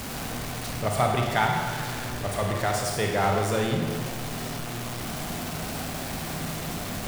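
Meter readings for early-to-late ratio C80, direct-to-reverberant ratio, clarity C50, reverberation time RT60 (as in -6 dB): 3.5 dB, 1.0 dB, 2.0 dB, 1.7 s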